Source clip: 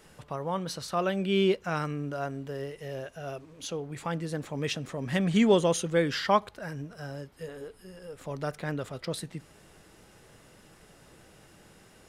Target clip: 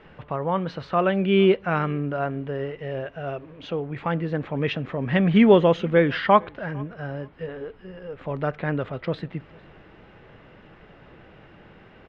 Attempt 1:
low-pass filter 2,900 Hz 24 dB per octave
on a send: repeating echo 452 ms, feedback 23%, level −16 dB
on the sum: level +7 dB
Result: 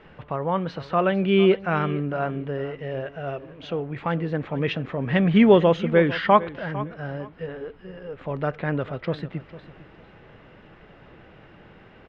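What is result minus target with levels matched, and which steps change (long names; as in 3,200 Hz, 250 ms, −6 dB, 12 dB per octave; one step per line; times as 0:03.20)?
echo-to-direct +10 dB
change: repeating echo 452 ms, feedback 23%, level −26 dB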